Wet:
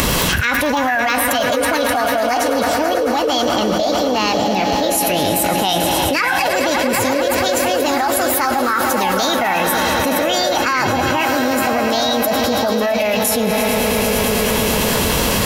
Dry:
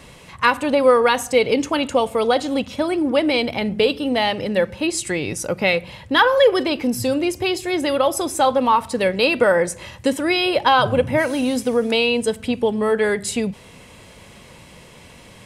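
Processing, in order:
upward compression, threshold −20 dBFS
echo that builds up and dies away 110 ms, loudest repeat 5, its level −15 dB
formants moved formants +6 semitones
graphic EQ with 10 bands 125 Hz −7 dB, 500 Hz −4 dB, 1,000 Hz −4 dB, 4,000 Hz −6 dB
envelope flattener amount 100%
level −3 dB

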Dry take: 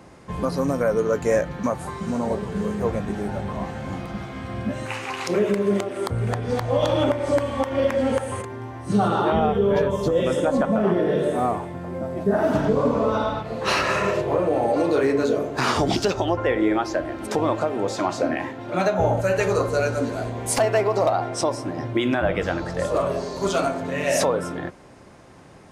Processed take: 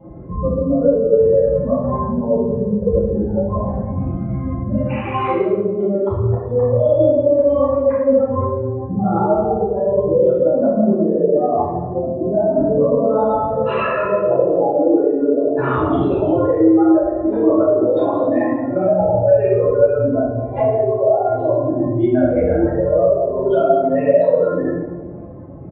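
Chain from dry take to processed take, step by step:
expanding power law on the bin magnitudes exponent 2.6
dynamic equaliser 160 Hz, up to −5 dB, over −36 dBFS, Q 0.86
brickwall limiter −22 dBFS, peak gain reduction 10 dB
convolution reverb RT60 1.3 s, pre-delay 3 ms, DRR −11.5 dB
downsampling to 8,000 Hz
level −9 dB

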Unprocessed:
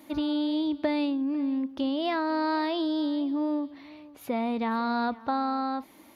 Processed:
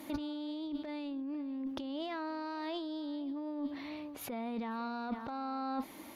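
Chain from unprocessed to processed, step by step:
harmonic generator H 2 −16 dB, 4 −16 dB, 6 −27 dB, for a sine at −15 dBFS
compressor whose output falls as the input rises −35 dBFS, ratio −1
level −3.5 dB

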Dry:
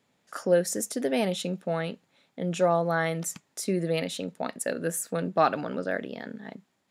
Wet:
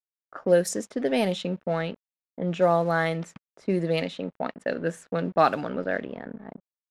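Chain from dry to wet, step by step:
dead-zone distortion −50.5 dBFS
low-pass that shuts in the quiet parts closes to 770 Hz, open at −20.5 dBFS
level +2.5 dB

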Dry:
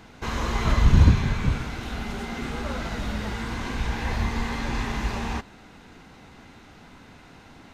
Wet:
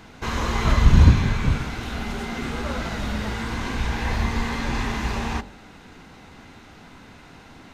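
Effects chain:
hum removal 47.5 Hz, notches 19
level +3 dB

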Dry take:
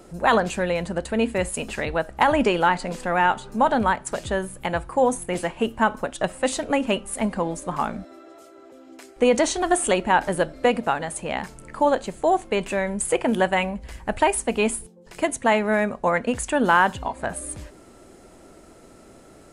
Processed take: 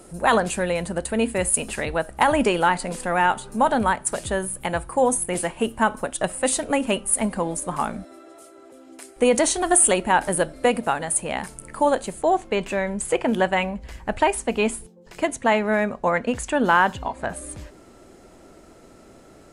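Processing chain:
parametric band 9,600 Hz +13.5 dB 0.48 octaves, from 0:12.22 −4.5 dB

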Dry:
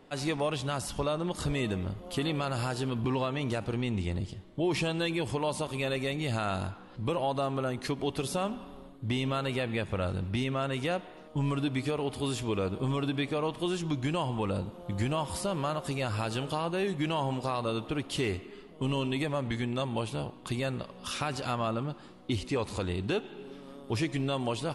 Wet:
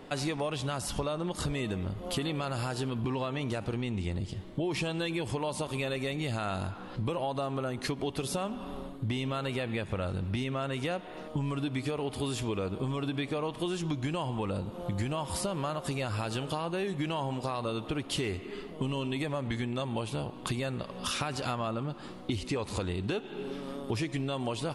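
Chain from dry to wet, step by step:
downward compressor 4 to 1, threshold −39 dBFS, peak gain reduction 12 dB
level +8 dB

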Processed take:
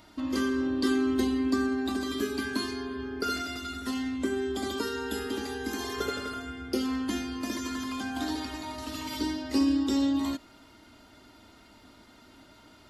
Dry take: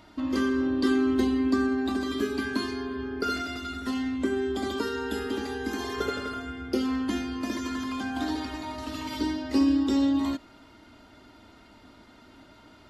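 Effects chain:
high-shelf EQ 5,200 Hz +9.5 dB
level −2.5 dB

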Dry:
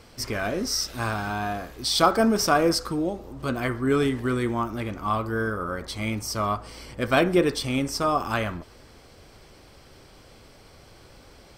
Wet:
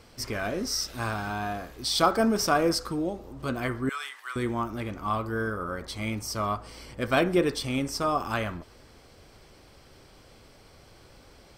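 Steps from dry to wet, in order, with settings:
0:03.89–0:04.36: high-pass filter 1,000 Hz 24 dB per octave
level −3 dB

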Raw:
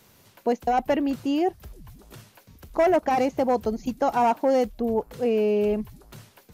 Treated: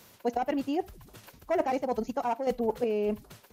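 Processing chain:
phase-vocoder stretch with locked phases 0.54×
square-wave tremolo 0.81 Hz, depth 60%, duty 30%
on a send at −22 dB: convolution reverb, pre-delay 7 ms
on the sum: automatic gain control gain up to 3.5 dB
low-shelf EQ 200 Hz −6.5 dB
reversed playback
downward compressor 6 to 1, threshold −30 dBFS, peak gain reduction 14.5 dB
reversed playback
level +4.5 dB

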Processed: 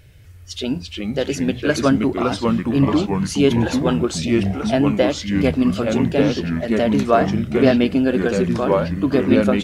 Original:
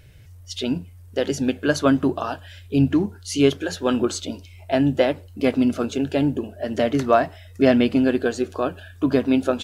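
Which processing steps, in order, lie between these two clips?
delay with pitch and tempo change per echo 243 ms, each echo −3 semitones, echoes 3
level +1 dB

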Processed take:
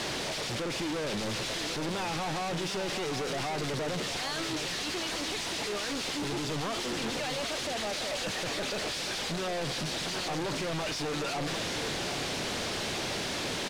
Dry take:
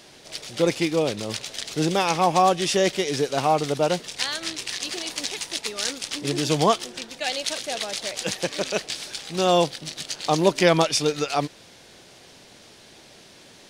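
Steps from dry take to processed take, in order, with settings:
sign of each sample alone
high-frequency loss of the air 65 metres
on a send: single-tap delay 752 ms −9 dB
on the sum: level −7 dB

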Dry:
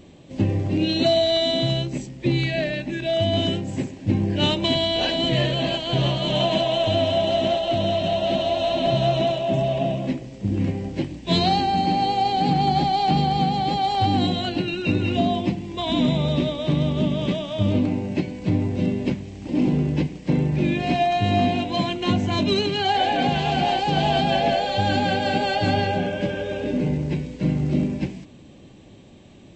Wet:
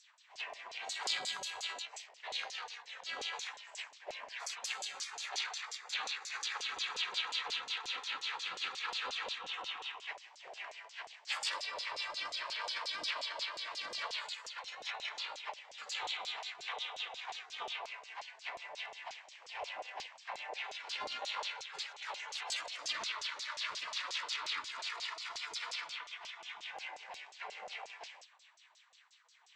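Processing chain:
phase distortion by the signal itself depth 0.076 ms
gate on every frequency bin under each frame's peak −25 dB weak
auto-filter band-pass saw down 5.6 Hz 560–6,700 Hz
level +4.5 dB

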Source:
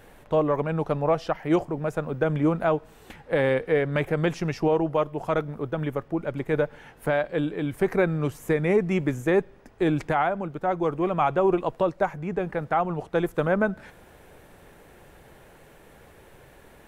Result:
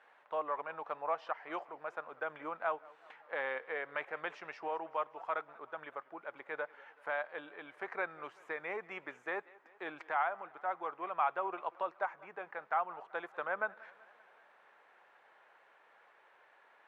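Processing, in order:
four-pole ladder band-pass 1,400 Hz, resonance 20%
feedback echo with a swinging delay time 191 ms, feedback 60%, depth 124 cents, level −22.5 dB
level +4 dB

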